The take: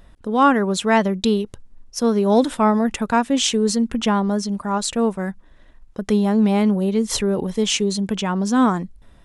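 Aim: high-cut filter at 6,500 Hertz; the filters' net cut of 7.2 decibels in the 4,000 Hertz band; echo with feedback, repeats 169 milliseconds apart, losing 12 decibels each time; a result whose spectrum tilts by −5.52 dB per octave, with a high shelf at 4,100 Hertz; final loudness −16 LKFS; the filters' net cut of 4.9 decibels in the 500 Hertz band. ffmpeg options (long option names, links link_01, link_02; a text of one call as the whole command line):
ffmpeg -i in.wav -af "lowpass=6500,equalizer=frequency=500:width_type=o:gain=-6,equalizer=frequency=4000:width_type=o:gain=-5.5,highshelf=frequency=4100:gain=-6.5,aecho=1:1:169|338|507:0.251|0.0628|0.0157,volume=5.5dB" out.wav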